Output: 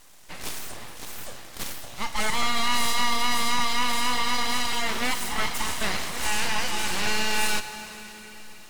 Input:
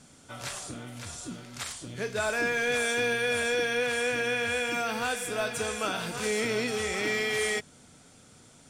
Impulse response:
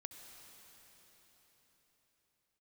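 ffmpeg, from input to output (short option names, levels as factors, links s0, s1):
-filter_complex "[0:a]highpass=f=280:w=0.5412,highpass=f=280:w=1.3066,aeval=exprs='abs(val(0))':c=same,asplit=2[s0][s1];[1:a]atrim=start_sample=2205[s2];[s1][s2]afir=irnorm=-1:irlink=0,volume=2.11[s3];[s0][s3]amix=inputs=2:normalize=0"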